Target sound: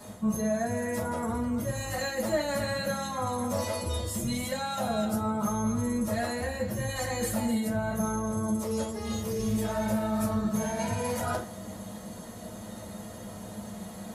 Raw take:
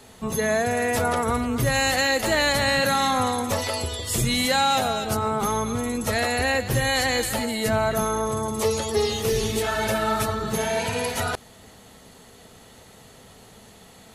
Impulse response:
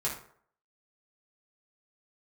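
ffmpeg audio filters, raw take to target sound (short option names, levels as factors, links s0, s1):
-filter_complex "[0:a]equalizer=f=2700:w=0.72:g=-11,areverse,acompressor=threshold=0.02:ratio=16,areverse,asoftclip=type=tanh:threshold=0.075[s0];[1:a]atrim=start_sample=2205,asetrate=66150,aresample=44100[s1];[s0][s1]afir=irnorm=-1:irlink=0,volume=2"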